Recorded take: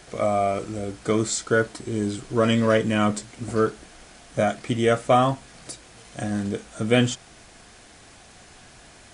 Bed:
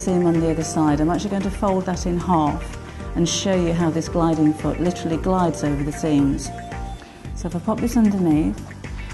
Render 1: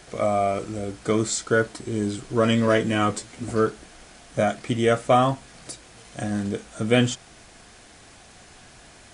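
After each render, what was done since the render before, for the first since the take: 2.67–3.5 doubler 12 ms -6 dB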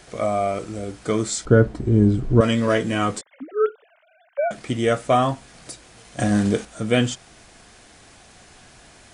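1.45–2.41 tilt -4.5 dB/oct; 3.21–4.51 sine-wave speech; 6.19–6.65 gain +7.5 dB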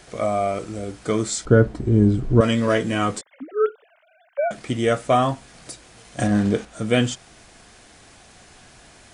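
6.26–6.73 LPF 2800 Hz -> 4500 Hz 6 dB/oct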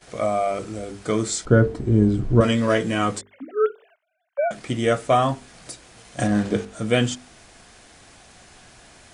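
notches 50/100/150/200/250/300/350/400/450 Hz; gate -51 dBFS, range -17 dB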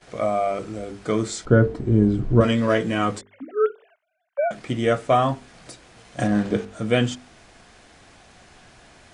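high shelf 6700 Hz -11 dB; notches 50/100 Hz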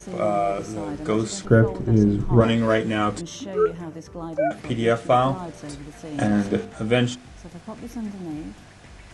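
add bed -15 dB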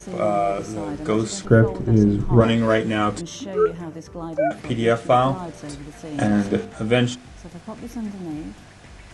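gain +1.5 dB

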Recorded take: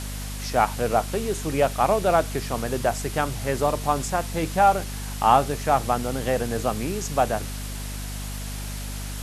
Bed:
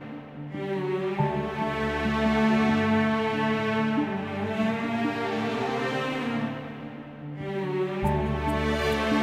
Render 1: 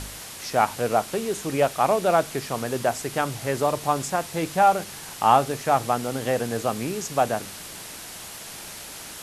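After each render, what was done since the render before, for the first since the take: de-hum 50 Hz, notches 5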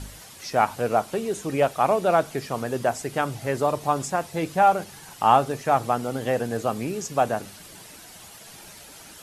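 denoiser 9 dB, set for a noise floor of -39 dBFS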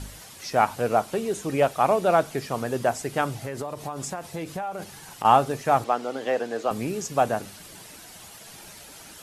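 3.37–5.25 compressor 16:1, threshold -27 dBFS; 5.84–6.71 three-band isolator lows -24 dB, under 250 Hz, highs -14 dB, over 6600 Hz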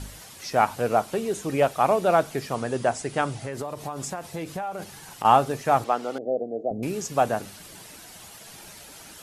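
2.54–3.53 brick-wall FIR low-pass 11000 Hz; 6.18–6.83 elliptic low-pass 700 Hz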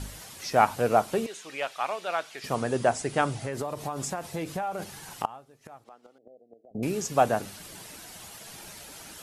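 1.26–2.44 band-pass 3000 Hz, Q 0.83; 5.25–6.75 flipped gate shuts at -22 dBFS, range -28 dB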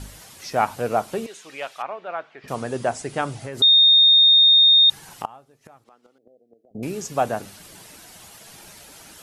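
1.82–2.48 LPF 1800 Hz; 3.62–4.9 bleep 3680 Hz -10 dBFS; 5.71–6.76 bell 690 Hz -5.5 dB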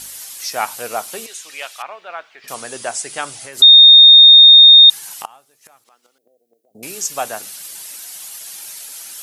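tilt +4.5 dB/oct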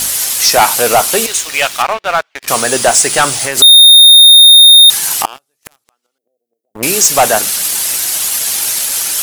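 sample leveller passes 5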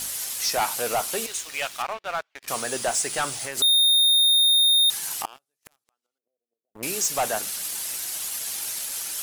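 gain -15.5 dB

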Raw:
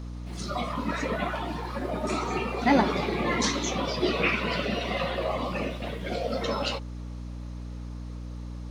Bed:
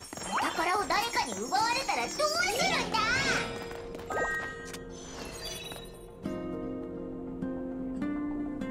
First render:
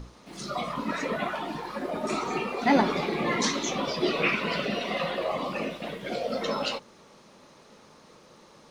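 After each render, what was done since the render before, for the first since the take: notches 60/120/180/240/300 Hz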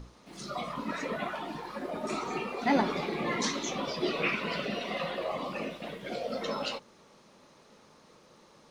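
gain -4.5 dB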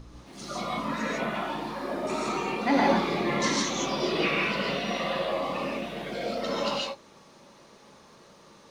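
non-linear reverb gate 0.18 s rising, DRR -3 dB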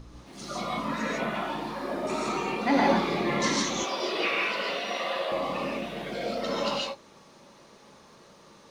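3.83–5.32 HPF 410 Hz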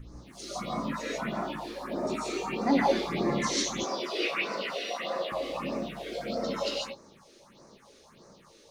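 phaser stages 4, 1.6 Hz, lowest notch 150–3100 Hz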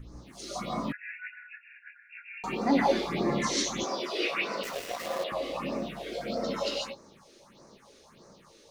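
0.92–2.44 brick-wall FIR band-pass 1400–2800 Hz; 4.63–5.24 switching dead time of 0.13 ms

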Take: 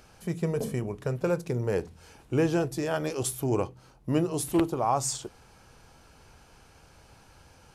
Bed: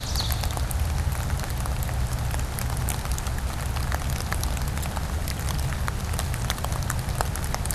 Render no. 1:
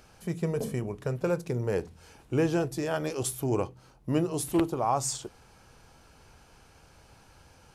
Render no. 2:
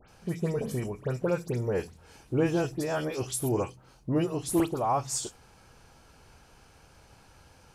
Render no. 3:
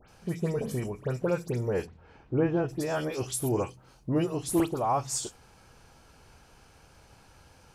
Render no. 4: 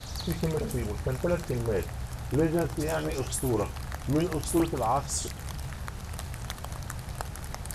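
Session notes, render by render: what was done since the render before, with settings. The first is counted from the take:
gain -1 dB
dispersion highs, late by 88 ms, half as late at 2400 Hz
1.85–2.68 LPF 2600 Hz -> 1600 Hz
add bed -10 dB

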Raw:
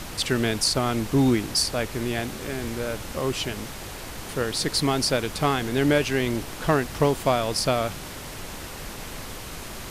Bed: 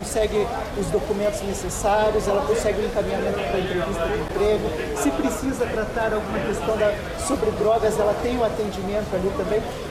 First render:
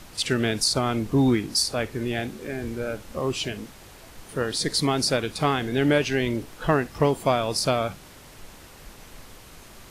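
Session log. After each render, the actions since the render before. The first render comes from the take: noise print and reduce 10 dB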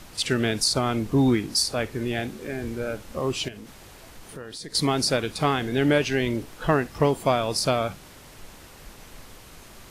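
3.48–4.75 compressor 3:1, threshold -38 dBFS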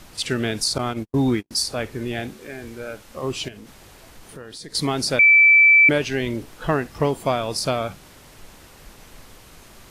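0.78–1.51 gate -26 dBFS, range -55 dB; 2.33–3.23 low shelf 490 Hz -7 dB; 5.19–5.89 bleep 2320 Hz -9 dBFS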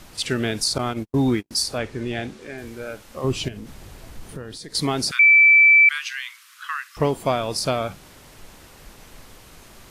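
1.78–2.58 LPF 7900 Hz; 3.24–4.59 low shelf 240 Hz +10 dB; 5.11–6.97 steep high-pass 1100 Hz 72 dB/oct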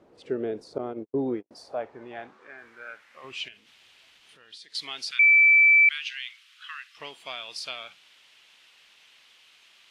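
band-pass sweep 440 Hz -> 3000 Hz, 1.16–3.66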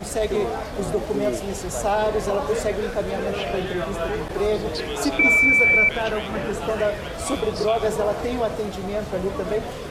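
add bed -2 dB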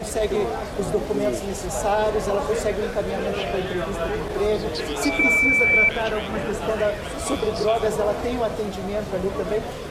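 pre-echo 0.161 s -13 dB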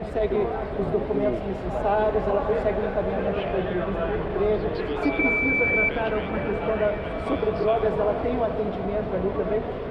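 air absorption 430 m; swelling echo 0.101 s, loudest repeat 5, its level -18 dB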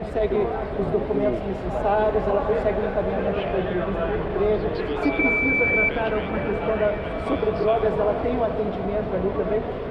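gain +1.5 dB

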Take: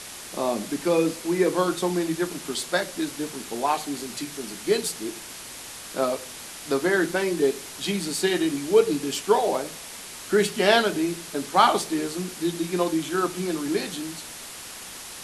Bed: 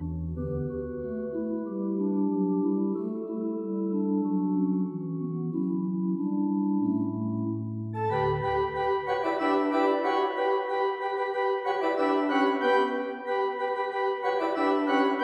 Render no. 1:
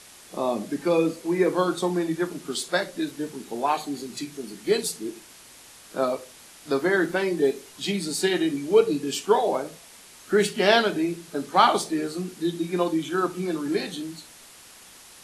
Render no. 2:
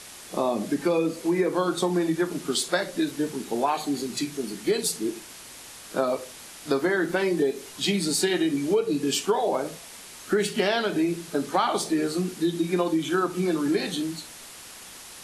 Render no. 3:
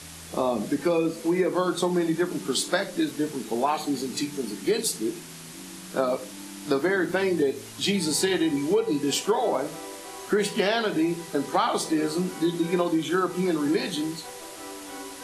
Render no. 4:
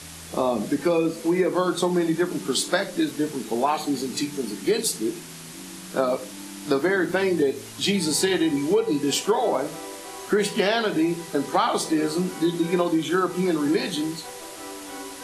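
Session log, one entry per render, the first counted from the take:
noise print and reduce 9 dB
in parallel at -3 dB: limiter -13.5 dBFS, peak gain reduction 10 dB; on the sum: compressor 6:1, threshold -20 dBFS, peak gain reduction 10.5 dB
add bed -16 dB
gain +2 dB

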